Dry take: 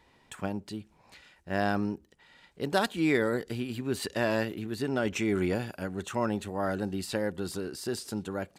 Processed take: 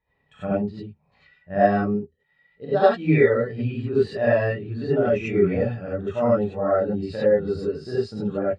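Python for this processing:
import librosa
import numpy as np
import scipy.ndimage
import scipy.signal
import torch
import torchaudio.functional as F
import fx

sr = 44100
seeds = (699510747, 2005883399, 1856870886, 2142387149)

p1 = scipy.signal.sosfilt(scipy.signal.butter(2, 4400.0, 'lowpass', fs=sr, output='sos'), x)
p2 = p1 + 0.3 * np.pad(p1, (int(1.6 * sr / 1000.0), 0))[:len(p1)]
p3 = fx.rider(p2, sr, range_db=4, speed_s=0.5)
p4 = p2 + (p3 * 10.0 ** (1.0 / 20.0))
p5 = fx.rev_gated(p4, sr, seeds[0], gate_ms=120, shape='rising', drr_db=-7.5)
p6 = fx.spectral_expand(p5, sr, expansion=1.5)
y = p6 * 10.0 ** (-4.0 / 20.0)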